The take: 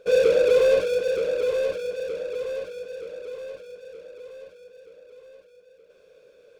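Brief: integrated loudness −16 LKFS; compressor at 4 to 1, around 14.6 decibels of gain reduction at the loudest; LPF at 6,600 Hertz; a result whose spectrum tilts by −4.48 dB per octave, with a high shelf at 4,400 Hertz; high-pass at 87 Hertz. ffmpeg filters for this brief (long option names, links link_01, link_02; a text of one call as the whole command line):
ffmpeg -i in.wav -af "highpass=87,lowpass=6600,highshelf=frequency=4400:gain=-7.5,acompressor=threshold=-33dB:ratio=4,volume=20dB" out.wav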